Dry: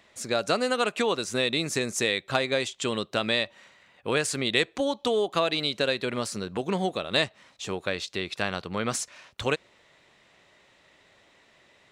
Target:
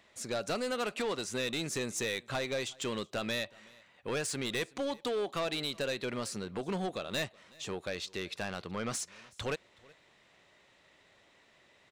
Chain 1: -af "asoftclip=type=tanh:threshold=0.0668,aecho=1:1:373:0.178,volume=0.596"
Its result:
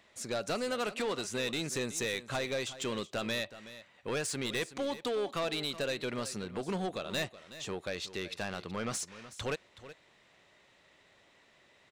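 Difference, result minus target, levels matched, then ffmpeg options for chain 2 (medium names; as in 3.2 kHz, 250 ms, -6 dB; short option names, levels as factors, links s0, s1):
echo-to-direct +10 dB
-af "asoftclip=type=tanh:threshold=0.0668,aecho=1:1:373:0.0562,volume=0.596"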